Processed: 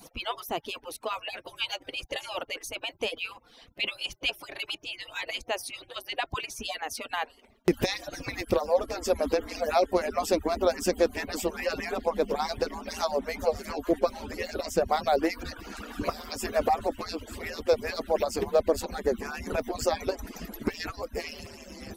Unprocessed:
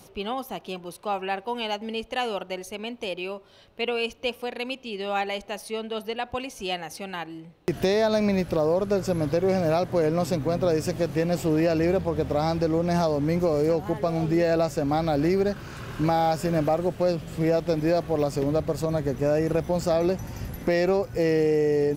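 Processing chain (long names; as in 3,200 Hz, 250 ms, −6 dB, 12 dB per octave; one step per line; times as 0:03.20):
harmonic-percussive split with one part muted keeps percussive
level +3.5 dB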